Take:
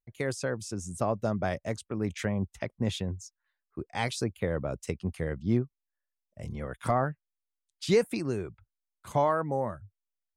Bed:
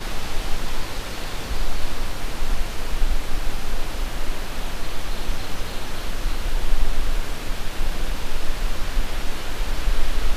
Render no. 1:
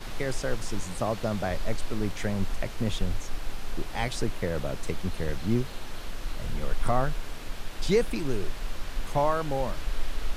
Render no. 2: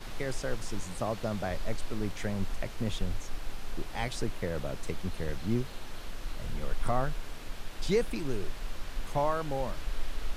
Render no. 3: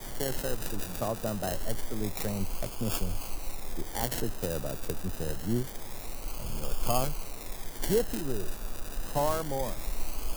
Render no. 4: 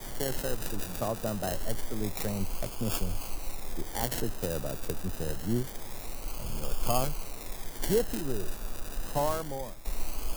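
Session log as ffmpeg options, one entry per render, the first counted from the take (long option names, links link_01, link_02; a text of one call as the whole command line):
ffmpeg -i in.wav -i bed.wav -filter_complex "[1:a]volume=-9.5dB[link_01];[0:a][link_01]amix=inputs=2:normalize=0" out.wav
ffmpeg -i in.wav -af "volume=-4dB" out.wav
ffmpeg -i in.wav -filter_complex "[0:a]acrossover=split=160|1200[link_01][link_02][link_03];[link_03]acrusher=samples=32:mix=1:aa=0.000001:lfo=1:lforange=19.2:lforate=0.26[link_04];[link_01][link_02][link_04]amix=inputs=3:normalize=0,crystalizer=i=7:c=0" out.wav
ffmpeg -i in.wav -filter_complex "[0:a]asplit=2[link_01][link_02];[link_01]atrim=end=9.85,asetpts=PTS-STARTPTS,afade=type=out:start_time=8.99:duration=0.86:curve=qsin:silence=0.199526[link_03];[link_02]atrim=start=9.85,asetpts=PTS-STARTPTS,afade=type=in:duration=0.004:curve=hsin:silence=0.199526[link_04];[link_03][link_04]concat=n=2:v=0:a=1" out.wav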